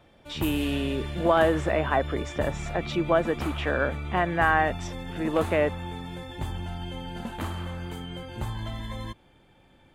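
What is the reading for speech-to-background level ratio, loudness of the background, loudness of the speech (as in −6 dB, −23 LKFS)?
8.5 dB, −35.0 LKFS, −26.5 LKFS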